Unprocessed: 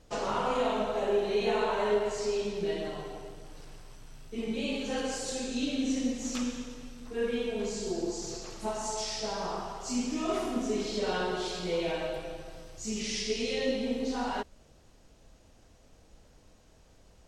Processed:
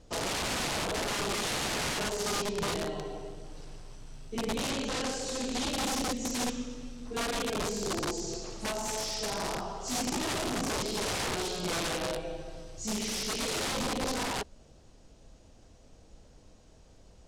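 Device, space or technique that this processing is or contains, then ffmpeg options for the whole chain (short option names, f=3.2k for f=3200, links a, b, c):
overflowing digital effects unit: -filter_complex "[0:a]aeval=exprs='(mod(23.7*val(0)+1,2)-1)/23.7':c=same,lowpass=8.9k,asettb=1/sr,asplit=3[a][b][c];[a]atrim=end=4.704[d];[b]atrim=start=4.7:end=5.69,asetpts=PTS-STARTPTS,afade=t=in:d=0.004:c=qsin,afade=t=out:st=0.986:d=0.004:c=qsin,lowpass=8.4k[e];[c]atrim=start=5.686[f];[d][e]acrossfade=d=0.004:c1=hsin:c2=qsin[g];[g][f]acrossfade=d=0.004:c1=qsin:c2=hsin,equalizer=f=1.8k:w=0.61:g=-4.5,volume=3dB"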